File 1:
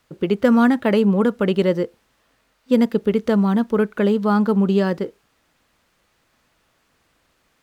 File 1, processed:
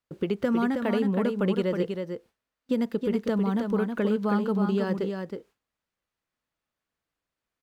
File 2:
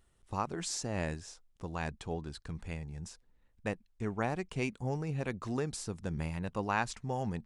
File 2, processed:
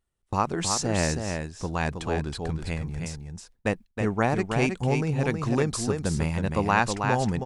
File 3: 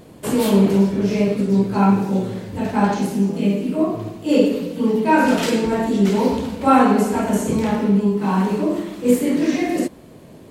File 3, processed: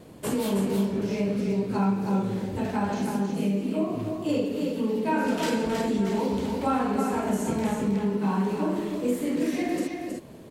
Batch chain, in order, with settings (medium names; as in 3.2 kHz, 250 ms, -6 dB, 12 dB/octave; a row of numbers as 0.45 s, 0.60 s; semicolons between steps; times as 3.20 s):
gate with hold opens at -43 dBFS; compression 3:1, threshold -21 dBFS; on a send: delay 319 ms -5.5 dB; on the sum: normalise loudness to -27 LUFS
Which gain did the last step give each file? -3.5 dB, +9.5 dB, -4.0 dB